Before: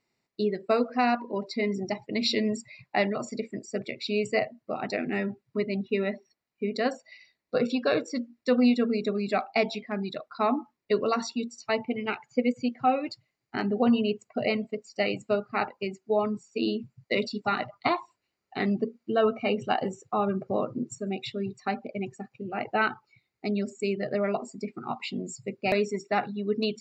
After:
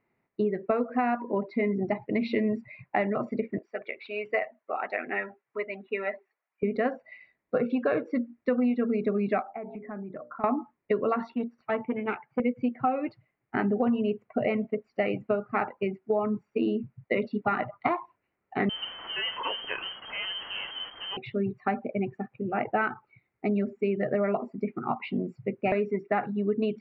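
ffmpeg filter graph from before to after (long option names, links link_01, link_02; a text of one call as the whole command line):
ffmpeg -i in.wav -filter_complex "[0:a]asettb=1/sr,asplit=3[link_01][link_02][link_03];[link_01]atrim=end=3.584[link_04];[link_02]atrim=start=3.58:end=6.63,asetpts=PTS-STARTPTS,afade=type=in:duration=0.004:curve=qsin,afade=type=out:start_time=3.046:duration=0.004:curve=qsin,aphaser=in_gain=1:out_gain=1:delay=2.7:decay=0.32:speed=1.3:type=triangular,highpass=690,lowpass=4900[link_05];[link_03]atrim=start=6.626[link_06];[link_04][link_05]acrossfade=duration=0.004:curve1=hsin:curve2=qsin[link_07];[link_07][link_06]acrossfade=duration=0.004:curve1=qsin:curve2=hsin,asettb=1/sr,asplit=3[link_08][link_09][link_10];[link_08]atrim=end=9.424[link_11];[link_09]atrim=start=9.42:end=10.44,asetpts=PTS-STARTPTS,afade=type=in:duration=0.004:curve=qsin,afade=type=out:start_time=1.016:duration=0.004:curve=qsin,lowpass=frequency=1700:width=0.5412,lowpass=frequency=1700:width=1.3066,bandreject=frequency=60:width_type=h:width=6,bandreject=frequency=120:width_type=h:width=6,bandreject=frequency=180:width_type=h:width=6,bandreject=frequency=240:width_type=h:width=6,bandreject=frequency=300:width_type=h:width=6,bandreject=frequency=360:width_type=h:width=6,bandreject=frequency=420:width_type=h:width=6,bandreject=frequency=480:width_type=h:width=6,bandreject=frequency=540:width_type=h:width=6,bandreject=frequency=600:width_type=h:width=6,acompressor=threshold=-40dB:ratio=5:attack=3.2:release=140:knee=1:detection=peak[link_12];[link_10]atrim=start=10.436[link_13];[link_11][link_12]acrossfade=duration=0.004:curve1=hsin:curve2=qsin[link_14];[link_14][link_13]acrossfade=duration=0.004:curve1=qsin:curve2=hsin,asettb=1/sr,asplit=3[link_15][link_16][link_17];[link_15]atrim=end=11.344[link_18];[link_16]atrim=start=11.34:end=12.4,asetpts=PTS-STARTPTS,afade=type=in:duration=0.004:curve=qsin,afade=type=out:start_time=1.056:duration=0.004:curve=qsin,aeval=exprs='(tanh(12.6*val(0)+0.6)-tanh(0.6))/12.6':channel_layout=same,highpass=140,lowpass=4100[link_19];[link_17]atrim=start=12.396[link_20];[link_18][link_19]acrossfade=duration=0.004:curve1=hsin:curve2=qsin[link_21];[link_21][link_20]acrossfade=duration=0.004:curve1=qsin:curve2=hsin,asettb=1/sr,asplit=3[link_22][link_23][link_24];[link_22]atrim=end=18.694[link_25];[link_23]atrim=start=18.69:end=21.17,asetpts=PTS-STARTPTS,afade=type=in:duration=0.004:curve=qsin,afade=type=out:start_time=2.476:duration=0.004:curve=qsin,aeval=exprs='val(0)+0.5*0.0398*sgn(val(0))':channel_layout=same,equalizer=frequency=870:width_type=o:width=1.7:gain=-14,lowpass=frequency=2800:width_type=q:width=0.5098,lowpass=frequency=2800:width_type=q:width=0.6013,lowpass=frequency=2800:width_type=q:width=0.9,lowpass=frequency=2800:width_type=q:width=2.563,afreqshift=-3300[link_26];[link_24]atrim=start=21.166[link_27];[link_25][link_26]acrossfade=duration=0.004:curve1=hsin:curve2=qsin[link_28];[link_28][link_27]acrossfade=duration=0.004:curve1=qsin:curve2=hsin,lowpass=frequency=2200:width=0.5412,lowpass=frequency=2200:width=1.3066,acompressor=threshold=-27dB:ratio=6,volume=4.5dB" out.wav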